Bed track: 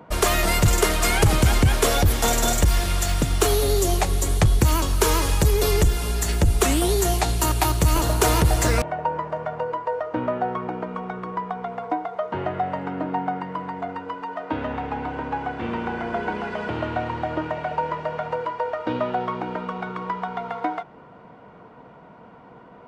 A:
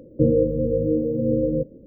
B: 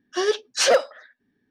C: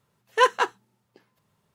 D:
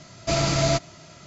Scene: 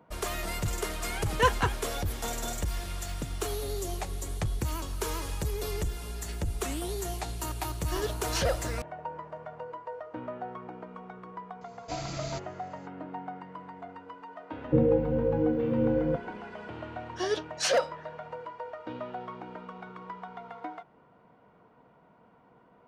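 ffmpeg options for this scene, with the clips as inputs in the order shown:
-filter_complex "[2:a]asplit=2[a][b];[0:a]volume=-13.5dB[c];[4:a]aphaser=in_gain=1:out_gain=1:delay=2:decay=0.21:speed=1.8:type=sinusoidal[d];[3:a]atrim=end=1.74,asetpts=PTS-STARTPTS,volume=-5.5dB,afade=t=in:d=0.004:c=hsin,afade=t=out:st=1.736:d=0.004:c=hsin,adelay=1020[e];[a]atrim=end=1.5,asetpts=PTS-STARTPTS,volume=-12dB,afade=t=in:d=0.004:c=hsin,afade=t=out:st=1.496:d=0.004:c=hsin,adelay=7750[f];[d]atrim=end=1.26,asetpts=PTS-STARTPTS,volume=-15.5dB,afade=t=in:d=0.004:c=hsin,afade=t=out:st=1.256:d=0.004:c=hsin,adelay=11610[g];[1:a]atrim=end=1.86,asetpts=PTS-STARTPTS,volume=-5dB,afade=t=in:d=0.004:c=hsin,afade=t=out:st=1.856:d=0.004:c=hsin,adelay=14530[h];[b]atrim=end=1.5,asetpts=PTS-STARTPTS,volume=-8dB,afade=t=in:d=0.004:c=hsin,afade=t=out:st=1.496:d=0.004:c=hsin,adelay=17030[i];[c][e][f][g][h][i]amix=inputs=6:normalize=0"

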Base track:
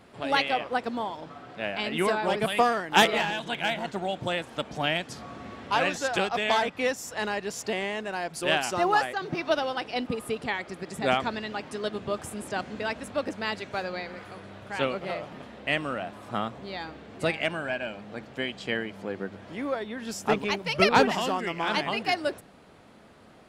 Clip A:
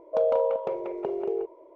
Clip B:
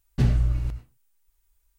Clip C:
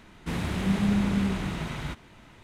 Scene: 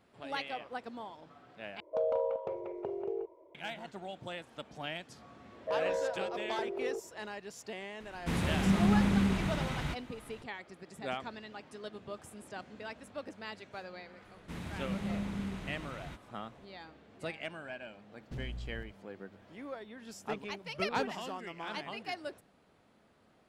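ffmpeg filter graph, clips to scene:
-filter_complex "[1:a]asplit=2[a][b];[3:a]asplit=2[c][d];[0:a]volume=-13dB[e];[a]equalizer=f=92:t=o:w=0.74:g=13.5[f];[b]asoftclip=type=tanh:threshold=-20dB[g];[2:a]asoftclip=type=hard:threshold=-20dB[h];[e]asplit=2[i][j];[i]atrim=end=1.804[k];[f]atrim=end=1.75,asetpts=PTS-STARTPTS,volume=-8dB[l];[j]atrim=start=3.546[m];[g]atrim=end=1.75,asetpts=PTS-STARTPTS,volume=-7dB,afade=t=in:d=0.004:c=hsin,afade=t=out:st=1.746:d=0.004:c=hsin,adelay=5540[n];[c]atrim=end=2.43,asetpts=PTS-STARTPTS,volume=-2dB,afade=t=in:d=0.004:c=hsin,afade=t=out:st=2.426:d=0.004:c=hsin,adelay=8000[o];[d]atrim=end=2.43,asetpts=PTS-STARTPTS,volume=-12dB,afade=t=in:d=0.004:c=hsin,afade=t=out:st=2.426:d=0.004:c=hsin,adelay=14220[p];[h]atrim=end=1.78,asetpts=PTS-STARTPTS,volume=-17.5dB,afade=t=in:d=0.004:c=hsin,afade=t=out:st=1.776:d=0.004:c=hsin,adelay=18130[q];[k][l]acrossfade=d=0.004:c1=hsin:c2=hsin[r];[r][m]acrossfade=d=0.004:c1=hsin:c2=hsin[s];[s][n][o][p][q]amix=inputs=5:normalize=0"

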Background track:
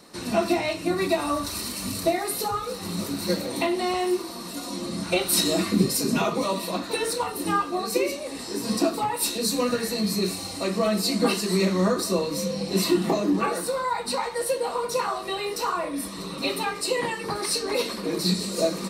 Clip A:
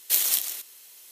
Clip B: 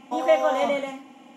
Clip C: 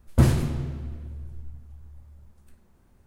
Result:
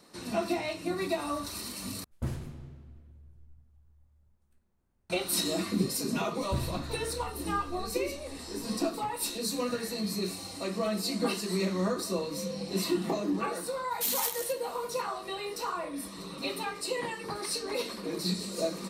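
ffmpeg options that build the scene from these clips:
-filter_complex "[3:a]asplit=2[a][b];[0:a]volume=-7.5dB[c];[b]asubboost=boost=7:cutoff=180[d];[1:a]volume=15.5dB,asoftclip=hard,volume=-15.5dB[e];[c]asplit=2[f][g];[f]atrim=end=2.044[h];[a]atrim=end=3.06,asetpts=PTS-STARTPTS,volume=-16dB[i];[g]atrim=start=5.096[j];[d]atrim=end=3.06,asetpts=PTS-STARTPTS,volume=-16.5dB,afade=t=in:d=0.004:c=hsin,afade=t=out:st=3.056:d=0.004:c=hsin,adelay=279594S[k];[e]atrim=end=1.11,asetpts=PTS-STARTPTS,volume=-7dB,afade=t=in:d=0.004:c=hsin,afade=t=out:st=1.106:d=0.004:c=hsin,adelay=13910[l];[h][i]acrossfade=d=0.004:c1=hsin:c2=hsin[m];[m][j]acrossfade=d=0.004:c1=hsin:c2=hsin[n];[n][k][l]amix=inputs=3:normalize=0"

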